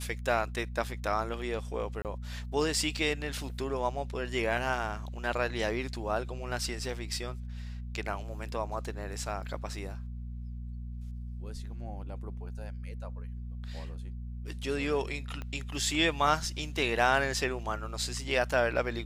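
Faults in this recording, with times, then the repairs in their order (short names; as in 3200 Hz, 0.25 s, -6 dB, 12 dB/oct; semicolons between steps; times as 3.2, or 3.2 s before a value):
hum 60 Hz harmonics 4 -39 dBFS
2.02–2.05 gap 28 ms
15.42 pop -25 dBFS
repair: de-click; de-hum 60 Hz, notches 4; interpolate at 2.02, 28 ms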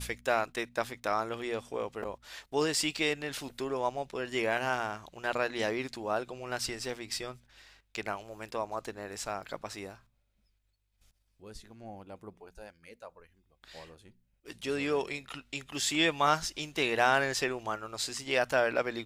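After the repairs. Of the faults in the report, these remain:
15.42 pop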